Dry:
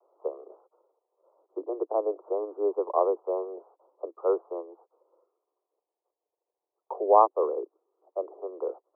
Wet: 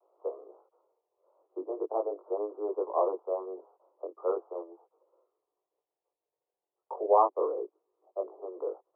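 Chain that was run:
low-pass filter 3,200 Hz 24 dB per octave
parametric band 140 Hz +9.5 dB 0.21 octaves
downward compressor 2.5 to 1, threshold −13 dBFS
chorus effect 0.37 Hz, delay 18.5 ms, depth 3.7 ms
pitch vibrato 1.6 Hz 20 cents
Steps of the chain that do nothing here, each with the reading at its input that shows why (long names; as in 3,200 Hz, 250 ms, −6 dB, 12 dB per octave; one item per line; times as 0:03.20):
low-pass filter 3,200 Hz: nothing at its input above 1,400 Hz
parametric band 140 Hz: nothing at its input below 270 Hz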